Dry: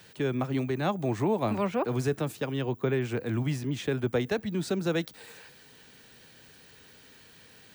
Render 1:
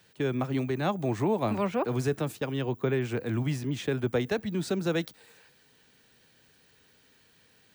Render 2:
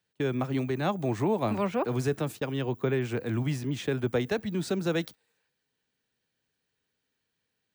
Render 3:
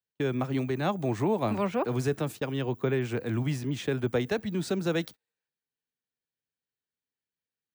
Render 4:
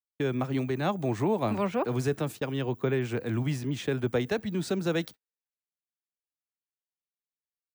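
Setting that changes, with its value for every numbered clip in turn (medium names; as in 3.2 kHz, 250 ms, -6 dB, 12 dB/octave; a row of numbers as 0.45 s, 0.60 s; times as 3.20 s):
gate, range: -8 dB, -27 dB, -43 dB, -58 dB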